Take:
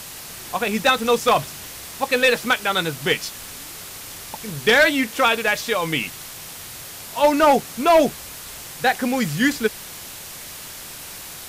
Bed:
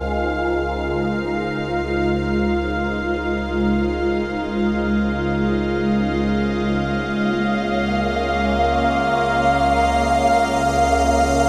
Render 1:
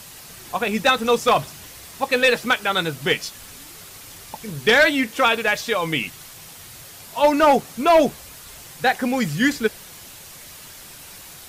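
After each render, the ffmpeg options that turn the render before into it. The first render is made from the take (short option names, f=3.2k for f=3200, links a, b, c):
-af "afftdn=nr=6:nf=-37"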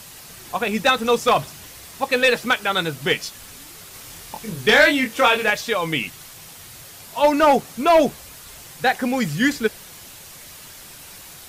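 -filter_complex "[0:a]asettb=1/sr,asplit=3[a][b][c];[a]atrim=end=3.914[d];[b]atrim=start=3.91:end=5.5,asetpts=PTS-STARTPTS,afade=t=in:d=0.004:c=qsin,afade=t=out:st=1.586:d=0.004:c=qsin,asplit=2[e][f];[f]adelay=24,volume=-4dB[g];[e][g]amix=inputs=2:normalize=0,atrim=end_sample=70119[h];[c]atrim=start=5.496[i];[d][h]acrossfade=d=0.004:c1=hsin:c2=qsin[j];[j][i]acrossfade=d=0.004:c1=qsin:c2=hsin"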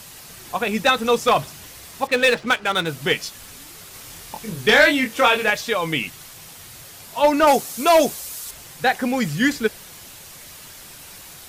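-filter_complex "[0:a]asettb=1/sr,asplit=3[a][b][c];[a]atrim=end=2.074[d];[b]atrim=start=2.07:end=2.87,asetpts=PTS-STARTPTS,afade=t=in:d=0.004:c=qsin,afade=t=out:st=0.796:d=0.004:c=qsin,adynamicsmooth=sensitivity=6.5:basefreq=2k[e];[c]atrim=start=2.866[f];[d][e]acrossfade=d=0.004:c1=hsin:c2=qsin[g];[g][f]acrossfade=d=0.004:c1=qsin:c2=hsin,asettb=1/sr,asplit=3[h][i][j];[h]atrim=end=7.474[k];[i]atrim=start=7.47:end=8.51,asetpts=PTS-STARTPTS,afade=t=in:d=0.004:c=qsin,afade=t=out:st=1.036:d=0.004:c=qsin,bass=f=250:g=-5,treble=f=4k:g=10[l];[j]atrim=start=8.506[m];[k][l]acrossfade=d=0.004:c1=hsin:c2=qsin[n];[n][m]acrossfade=d=0.004:c1=qsin:c2=hsin"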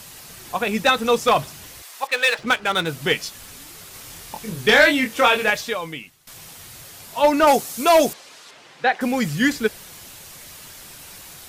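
-filter_complex "[0:a]asettb=1/sr,asplit=3[a][b][c];[a]atrim=end=1.824[d];[b]atrim=start=1.82:end=2.39,asetpts=PTS-STARTPTS,afade=t=in:d=0.004:c=qsin,afade=t=out:st=0.566:d=0.004:c=qsin,highpass=750[e];[c]atrim=start=2.386[f];[d][e]acrossfade=d=0.004:c1=hsin:c2=qsin[g];[g][f]acrossfade=d=0.004:c1=qsin:c2=hsin,asettb=1/sr,asplit=3[h][i][j];[h]atrim=end=8.134[k];[i]atrim=start=8.13:end=9.01,asetpts=PTS-STARTPTS,afade=t=in:d=0.004:c=qsin,afade=t=out:st=0.876:d=0.004:c=qsin,highpass=270,lowpass=3.6k[l];[j]atrim=start=9.006[m];[k][l]acrossfade=d=0.004:c1=hsin:c2=qsin[n];[n][m]acrossfade=d=0.004:c1=qsin:c2=hsin,asplit=2[o][p];[o]atrim=end=6.27,asetpts=PTS-STARTPTS,afade=t=out:st=5.59:d=0.68:c=qua:silence=0.11885[q];[p]atrim=start=6.27,asetpts=PTS-STARTPTS,afade=t=in:d=0.004:c=hsin:silence=0.11885[r];[q][r]concat=n=2:v=0:a=1"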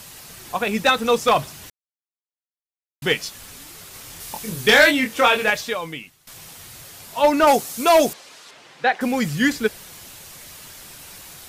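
-filter_complex "[0:a]asettb=1/sr,asplit=3[a][b][c];[a]atrim=end=4.204[d];[b]atrim=start=4.2:end=4.91,asetpts=PTS-STARTPTS,afade=t=in:d=0.004:c=qsin,afade=t=out:st=0.706:d=0.004:c=qsin,highshelf=f=5k:g=6.5[e];[c]atrim=start=4.906[f];[d][e]acrossfade=d=0.004:c1=hsin:c2=qsin[g];[g][f]acrossfade=d=0.004:c1=qsin:c2=hsin,asplit=3[h][i][j];[h]atrim=end=1.7,asetpts=PTS-STARTPTS,afade=t=out:st=1.696:d=0.004:c=hsin[k];[i]atrim=start=1.7:end=3.02,asetpts=PTS-STARTPTS,volume=0[l];[j]atrim=start=3.02,asetpts=PTS-STARTPTS,afade=t=in:d=0.004:c=hsin[m];[k][l][m]concat=n=3:v=0:a=1"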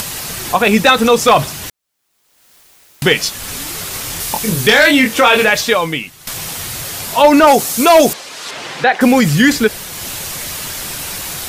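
-af "acompressor=mode=upward:threshold=-31dB:ratio=2.5,alimiter=level_in=13dB:limit=-1dB:release=50:level=0:latency=1"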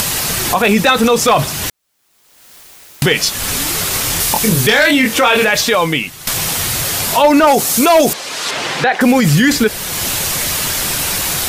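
-filter_complex "[0:a]asplit=2[a][b];[b]acompressor=threshold=-20dB:ratio=6,volume=2.5dB[c];[a][c]amix=inputs=2:normalize=0,alimiter=limit=-3dB:level=0:latency=1:release=20"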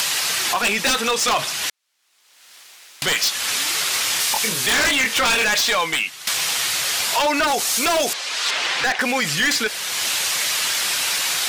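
-af "bandpass=f=3.1k:t=q:w=0.52:csg=0,aeval=exprs='0.237*(abs(mod(val(0)/0.237+3,4)-2)-1)':c=same"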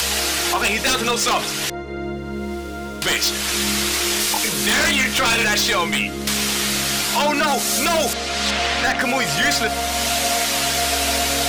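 -filter_complex "[1:a]volume=-8dB[a];[0:a][a]amix=inputs=2:normalize=0"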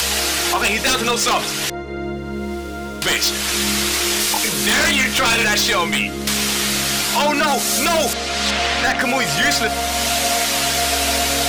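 -af "volume=1.5dB"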